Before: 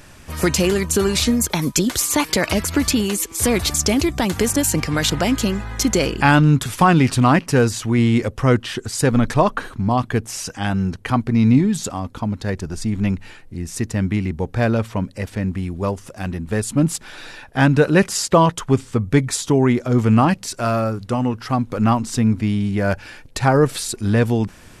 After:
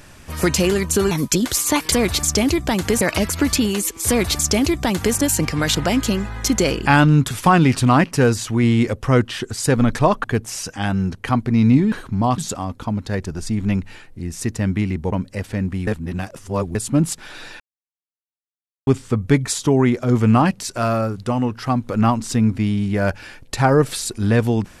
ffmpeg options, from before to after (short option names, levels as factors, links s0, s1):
-filter_complex "[0:a]asplit=12[s0][s1][s2][s3][s4][s5][s6][s7][s8][s9][s10][s11];[s0]atrim=end=1.112[s12];[s1]atrim=start=1.548:end=2.362[s13];[s2]atrim=start=3.428:end=4.522[s14];[s3]atrim=start=2.358:end=9.592[s15];[s4]atrim=start=10.048:end=11.732[s16];[s5]atrim=start=9.588:end=10.052[s17];[s6]atrim=start=11.728:end=14.472[s18];[s7]atrim=start=14.948:end=15.702[s19];[s8]atrim=start=15.698:end=16.582,asetpts=PTS-STARTPTS,areverse[s20];[s9]atrim=start=16.578:end=17.43,asetpts=PTS-STARTPTS,afade=t=out:st=0.848:d=0.004:c=hsin[s21];[s10]atrim=start=17.43:end=18.7,asetpts=PTS-STARTPTS,volume=0[s22];[s11]atrim=start=18.7,asetpts=PTS-STARTPTS,afade=t=in:d=0.004:c=hsin[s23];[s12][s13]acrossfade=d=0.004:c1=hsin:c2=hsin[s24];[s24][s14]acrossfade=d=0.004:c1=hsin:c2=hsin[s25];[s25][s15]acrossfade=d=0.004:c1=hsin:c2=hsin[s26];[s26][s16]acrossfade=d=0.004:c1=hsin:c2=hsin[s27];[s27][s17]acrossfade=d=0.004:c1=hsin:c2=hsin[s28];[s28][s18]acrossfade=d=0.004:c1=hsin:c2=hsin[s29];[s29][s19]acrossfade=d=0.004:c1=hsin:c2=hsin[s30];[s30][s20]acrossfade=d=0.004:c1=hsin:c2=hsin[s31];[s21][s22][s23]concat=n=3:v=0:a=1[s32];[s31][s32]acrossfade=d=0.004:c1=hsin:c2=hsin"